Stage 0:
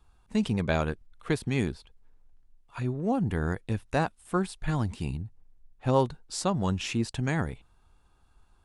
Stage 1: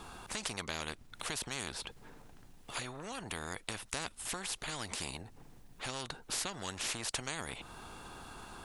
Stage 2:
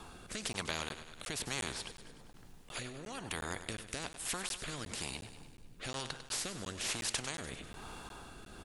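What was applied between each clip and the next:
compression 2.5:1, threshold -41 dBFS, peak gain reduction 15 dB; spectrum-flattening compressor 4:1; trim +7 dB
rotary cabinet horn 1.1 Hz; on a send: feedback delay 99 ms, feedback 60%, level -11.5 dB; on the sum: crackling interface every 0.36 s, samples 512, zero, from 0.53 s; trim +2 dB

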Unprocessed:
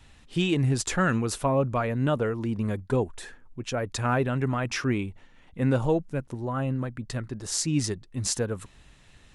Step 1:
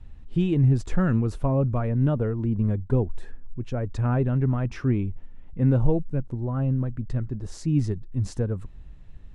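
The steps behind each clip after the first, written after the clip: tilt EQ -4 dB/octave; trim -6 dB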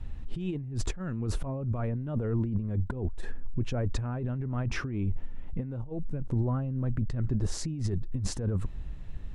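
compressor with a negative ratio -30 dBFS, ratio -1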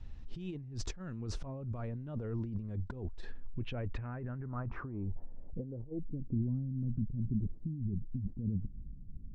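low-pass sweep 5.6 kHz -> 220 Hz, 3.03–6.50 s; trim -8.5 dB

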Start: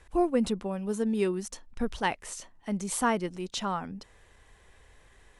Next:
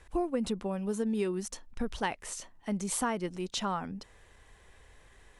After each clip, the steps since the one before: compression, threshold -27 dBFS, peak gain reduction 7 dB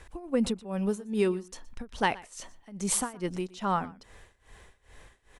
tremolo 2.4 Hz, depth 93%; delay 120 ms -21 dB; trim +6.5 dB

